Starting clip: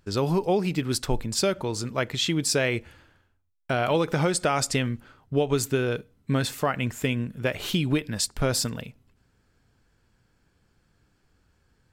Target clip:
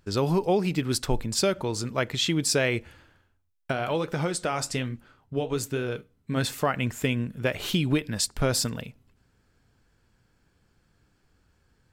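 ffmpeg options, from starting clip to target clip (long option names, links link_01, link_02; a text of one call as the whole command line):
ffmpeg -i in.wav -filter_complex "[0:a]asplit=3[link_01][link_02][link_03];[link_01]afade=type=out:start_time=3.71:duration=0.02[link_04];[link_02]flanger=delay=4.3:depth=8.4:regen=-72:speed=1.2:shape=triangular,afade=type=in:start_time=3.71:duration=0.02,afade=type=out:start_time=6.36:duration=0.02[link_05];[link_03]afade=type=in:start_time=6.36:duration=0.02[link_06];[link_04][link_05][link_06]amix=inputs=3:normalize=0" out.wav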